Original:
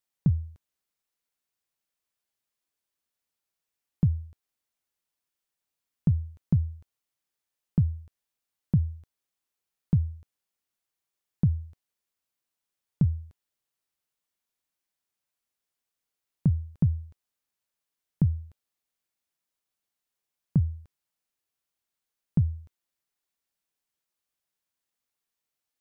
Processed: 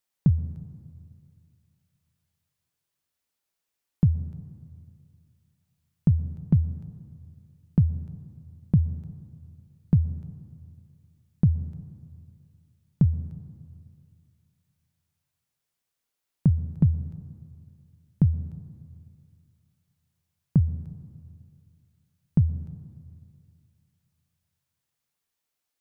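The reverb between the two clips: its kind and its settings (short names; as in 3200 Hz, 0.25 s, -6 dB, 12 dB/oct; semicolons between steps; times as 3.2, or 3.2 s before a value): plate-style reverb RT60 2.4 s, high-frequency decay 0.3×, pre-delay 0.105 s, DRR 15 dB; gain +3 dB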